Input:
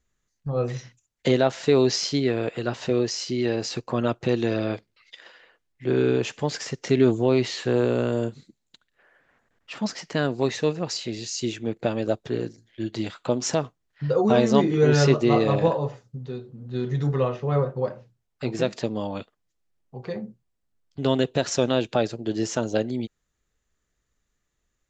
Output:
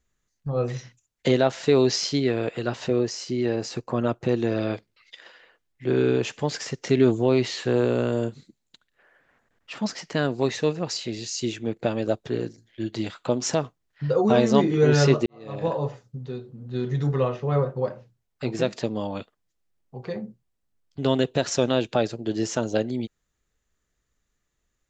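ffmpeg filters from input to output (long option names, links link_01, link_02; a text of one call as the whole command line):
ffmpeg -i in.wav -filter_complex "[0:a]asettb=1/sr,asplit=3[link_01][link_02][link_03];[link_01]atrim=end=2.884[link_04];[link_02]atrim=start=2.88:end=4.57,asetpts=PTS-STARTPTS,afade=type=in:duration=0.004:curve=qsin,afade=type=out:start_time=1.686:duration=0.004:curve=qsin,equalizer=frequency=3700:width_type=o:width=1.8:gain=-5.5[link_05];[link_03]atrim=start=4.566[link_06];[link_04][link_05]acrossfade=duration=0.004:curve1=hsin:curve2=qsin[link_07];[link_07][link_06]acrossfade=duration=0.004:curve1=qsin:curve2=hsin,asplit=2[link_08][link_09];[link_08]atrim=end=15.26,asetpts=PTS-STARTPTS,afade=type=out:start_time=15.256:duration=0.004:curve=hsin[link_10];[link_09]atrim=start=15.26,asetpts=PTS-STARTPTS,afade=type=in:duration=0.54:curve=qua[link_11];[link_10][link_11]concat=n=2:v=0:a=1" out.wav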